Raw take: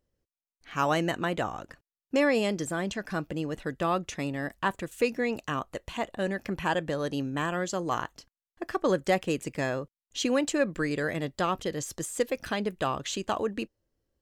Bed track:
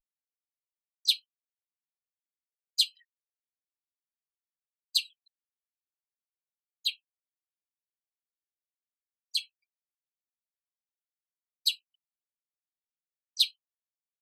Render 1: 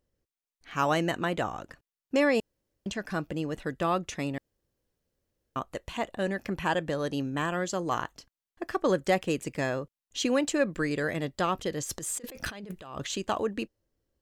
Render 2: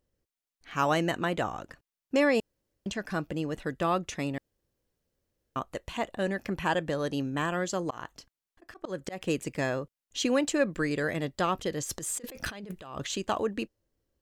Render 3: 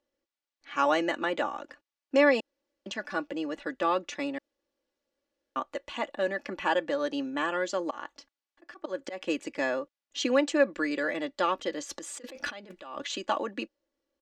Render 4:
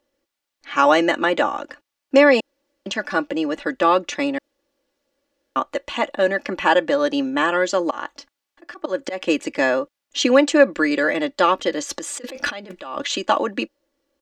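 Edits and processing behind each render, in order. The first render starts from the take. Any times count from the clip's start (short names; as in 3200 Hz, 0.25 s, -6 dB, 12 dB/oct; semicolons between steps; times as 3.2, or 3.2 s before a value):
2.4–2.86 room tone; 4.38–5.56 room tone; 11.89–13.1 negative-ratio compressor -39 dBFS
7.78–9.21 auto swell 0.242 s
three-band isolator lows -20 dB, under 260 Hz, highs -21 dB, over 6500 Hz; comb 3.5 ms, depth 61%
gain +10.5 dB; limiter -3 dBFS, peak gain reduction 3 dB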